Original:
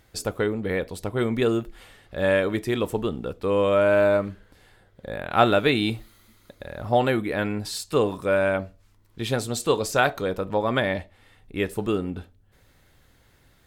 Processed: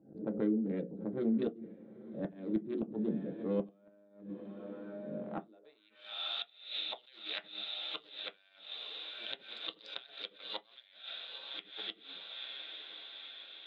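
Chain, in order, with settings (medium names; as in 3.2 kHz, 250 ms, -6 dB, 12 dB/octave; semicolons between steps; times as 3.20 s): local Wiener filter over 41 samples; frequency weighting A; level-controlled noise filter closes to 970 Hz, open at -20 dBFS; peaking EQ 3.8 kHz +14.5 dB 0.5 oct; hum notches 60/120/180/240/300/360/420/480/540 Hz; echo that smears into a reverb 946 ms, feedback 60%, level -15.5 dB; band-pass sweep 210 Hz -> 3.4 kHz, 5.46–6.01 s; inverted gate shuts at -29 dBFS, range -36 dB; on a send at -3.5 dB: reverberation RT60 0.15 s, pre-delay 3 ms; on the sum: swell ahead of each attack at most 120 dB/s; trim +4 dB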